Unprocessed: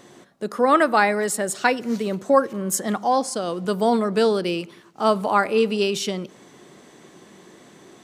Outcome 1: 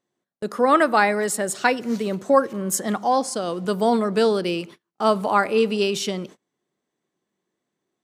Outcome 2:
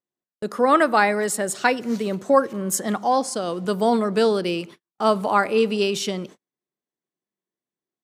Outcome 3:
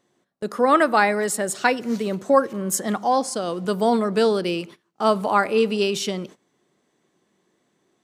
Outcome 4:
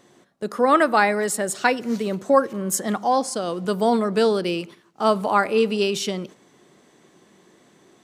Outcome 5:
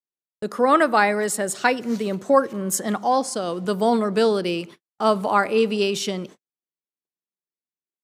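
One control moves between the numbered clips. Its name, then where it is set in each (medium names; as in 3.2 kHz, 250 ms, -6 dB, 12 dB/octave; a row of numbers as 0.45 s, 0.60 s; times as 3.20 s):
gate, range: -32 dB, -46 dB, -20 dB, -7 dB, -60 dB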